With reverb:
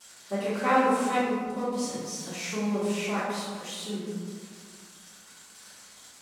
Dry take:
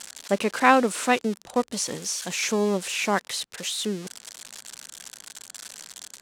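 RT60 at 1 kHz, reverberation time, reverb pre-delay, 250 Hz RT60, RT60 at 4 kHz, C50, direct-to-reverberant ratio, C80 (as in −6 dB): 1.7 s, 1.7 s, 3 ms, 2.2 s, 0.80 s, −2.0 dB, −14.5 dB, 0.5 dB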